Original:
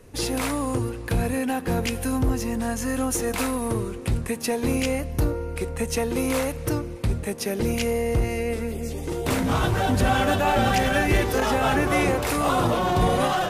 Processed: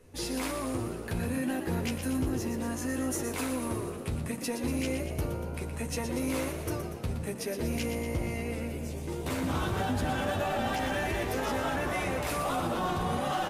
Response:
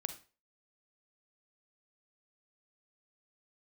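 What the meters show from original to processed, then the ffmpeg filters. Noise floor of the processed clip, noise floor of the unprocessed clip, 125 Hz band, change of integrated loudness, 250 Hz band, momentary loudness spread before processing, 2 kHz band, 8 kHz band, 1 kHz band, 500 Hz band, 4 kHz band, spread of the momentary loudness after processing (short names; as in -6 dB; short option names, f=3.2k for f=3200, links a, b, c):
-38 dBFS, -34 dBFS, -8.0 dB, -8.0 dB, -7.0 dB, 7 LU, -8.5 dB, -7.5 dB, -8.5 dB, -9.0 dB, -8.0 dB, 5 LU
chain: -filter_complex "[0:a]asplit=2[a][b];[b]adelay=12,volume=-4dB[c];[a][c]amix=inputs=2:normalize=0,alimiter=limit=-14dB:level=0:latency=1,asplit=2[d][e];[e]asplit=8[f][g][h][i][j][k][l][m];[f]adelay=119,afreqshift=57,volume=-8.5dB[n];[g]adelay=238,afreqshift=114,volume=-12.5dB[o];[h]adelay=357,afreqshift=171,volume=-16.5dB[p];[i]adelay=476,afreqshift=228,volume=-20.5dB[q];[j]adelay=595,afreqshift=285,volume=-24.6dB[r];[k]adelay=714,afreqshift=342,volume=-28.6dB[s];[l]adelay=833,afreqshift=399,volume=-32.6dB[t];[m]adelay=952,afreqshift=456,volume=-36.6dB[u];[n][o][p][q][r][s][t][u]amix=inputs=8:normalize=0[v];[d][v]amix=inputs=2:normalize=0,volume=-9dB"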